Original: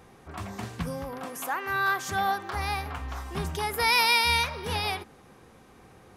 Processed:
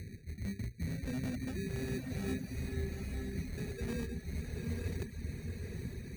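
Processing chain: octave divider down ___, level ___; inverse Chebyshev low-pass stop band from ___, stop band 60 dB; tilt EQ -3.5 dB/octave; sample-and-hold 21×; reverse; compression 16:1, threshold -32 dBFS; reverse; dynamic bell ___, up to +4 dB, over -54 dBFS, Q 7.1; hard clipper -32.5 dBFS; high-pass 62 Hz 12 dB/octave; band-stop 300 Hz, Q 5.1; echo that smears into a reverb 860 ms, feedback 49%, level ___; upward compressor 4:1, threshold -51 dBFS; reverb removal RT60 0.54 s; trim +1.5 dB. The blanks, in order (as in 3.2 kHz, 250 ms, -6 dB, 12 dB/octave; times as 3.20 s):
1 oct, -4 dB, 1.3 kHz, 250 Hz, -3 dB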